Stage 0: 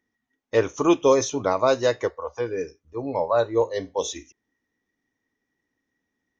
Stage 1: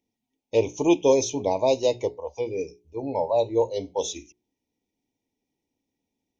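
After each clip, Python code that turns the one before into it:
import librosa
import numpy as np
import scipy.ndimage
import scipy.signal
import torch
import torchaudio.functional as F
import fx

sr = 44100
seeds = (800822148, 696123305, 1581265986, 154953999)

y = scipy.signal.sosfilt(scipy.signal.ellip(3, 1.0, 50, [920.0, 2300.0], 'bandstop', fs=sr, output='sos'), x)
y = fx.hum_notches(y, sr, base_hz=60, count=7)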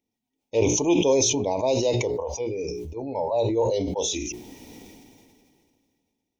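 y = fx.sustainer(x, sr, db_per_s=25.0)
y = y * 10.0 ** (-2.5 / 20.0)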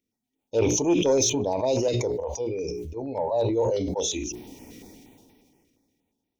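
y = 10.0 ** (-11.0 / 20.0) * np.tanh(x / 10.0 ** (-11.0 / 20.0))
y = fx.filter_held_notch(y, sr, hz=8.5, low_hz=850.0, high_hz=7100.0)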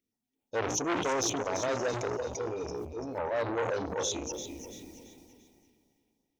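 y = fx.echo_feedback(x, sr, ms=339, feedback_pct=36, wet_db=-10)
y = fx.transformer_sat(y, sr, knee_hz=1600.0)
y = y * 10.0 ** (-4.0 / 20.0)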